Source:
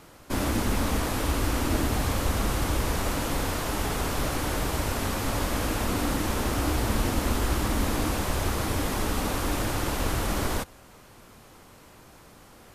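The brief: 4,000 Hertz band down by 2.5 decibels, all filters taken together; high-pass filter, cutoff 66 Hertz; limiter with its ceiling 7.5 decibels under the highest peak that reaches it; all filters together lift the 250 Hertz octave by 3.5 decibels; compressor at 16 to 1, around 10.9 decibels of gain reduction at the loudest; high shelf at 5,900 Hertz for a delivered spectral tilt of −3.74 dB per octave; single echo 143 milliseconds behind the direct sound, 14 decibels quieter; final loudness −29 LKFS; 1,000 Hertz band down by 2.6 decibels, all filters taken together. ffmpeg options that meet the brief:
ffmpeg -i in.wav -af "highpass=66,equalizer=frequency=250:width_type=o:gain=4.5,equalizer=frequency=1000:width_type=o:gain=-3.5,equalizer=frequency=4000:width_type=o:gain=-6.5,highshelf=frequency=5900:gain=8.5,acompressor=threshold=-32dB:ratio=16,alimiter=level_in=6dB:limit=-24dB:level=0:latency=1,volume=-6dB,aecho=1:1:143:0.2,volume=10.5dB" out.wav

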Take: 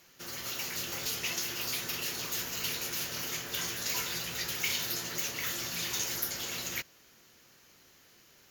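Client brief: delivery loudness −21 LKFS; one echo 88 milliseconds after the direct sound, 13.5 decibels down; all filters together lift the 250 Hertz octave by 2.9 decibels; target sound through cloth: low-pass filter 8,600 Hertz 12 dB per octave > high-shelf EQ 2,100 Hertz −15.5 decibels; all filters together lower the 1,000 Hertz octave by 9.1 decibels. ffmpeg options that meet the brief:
ffmpeg -i in.wav -af "lowpass=8600,equalizer=frequency=250:width_type=o:gain=5,equalizer=frequency=1000:width_type=o:gain=-8,highshelf=frequency=2100:gain=-15.5,aecho=1:1:88:0.211,volume=22.5dB" out.wav

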